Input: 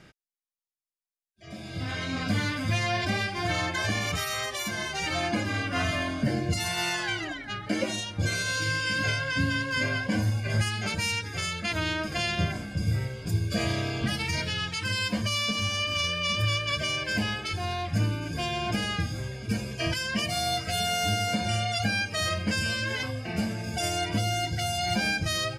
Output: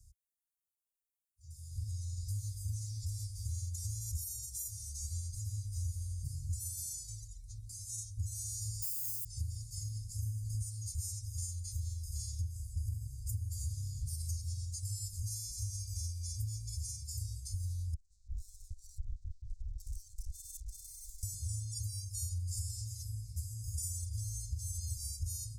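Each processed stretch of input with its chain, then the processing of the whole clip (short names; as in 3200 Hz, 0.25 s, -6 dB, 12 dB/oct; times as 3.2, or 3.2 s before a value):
8.82–9.25 HPF 140 Hz 24 dB/oct + modulation noise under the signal 13 dB + high shelf 8900 Hz +10 dB
17.94–21.23 monotone LPC vocoder at 8 kHz 210 Hz + tube stage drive 34 dB, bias 0.45
24.12–24.87 high shelf 10000 Hz -11.5 dB + comb 3.8 ms, depth 42%
whole clip: inverse Chebyshev band-stop 210–3100 Hz, stop band 50 dB; compressor 6:1, threshold -39 dBFS; passive tone stack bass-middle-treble 6-0-2; gain +18 dB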